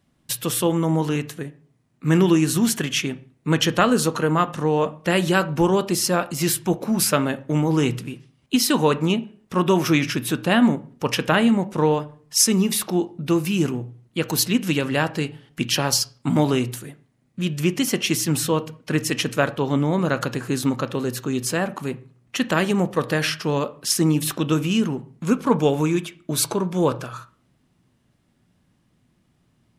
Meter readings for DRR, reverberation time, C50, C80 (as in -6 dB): 12.0 dB, 0.45 s, 18.5 dB, 22.5 dB